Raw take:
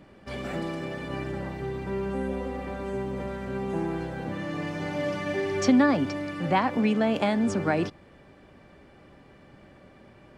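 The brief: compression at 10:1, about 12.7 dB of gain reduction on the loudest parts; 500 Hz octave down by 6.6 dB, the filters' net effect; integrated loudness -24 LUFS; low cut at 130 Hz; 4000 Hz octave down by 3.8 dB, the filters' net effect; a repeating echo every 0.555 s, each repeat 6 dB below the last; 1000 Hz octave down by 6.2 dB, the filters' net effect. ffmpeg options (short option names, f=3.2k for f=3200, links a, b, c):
-af "highpass=130,equalizer=f=500:t=o:g=-7.5,equalizer=f=1k:t=o:g=-5,equalizer=f=4k:t=o:g=-5,acompressor=threshold=-31dB:ratio=10,aecho=1:1:555|1110|1665|2220|2775|3330:0.501|0.251|0.125|0.0626|0.0313|0.0157,volume=12dB"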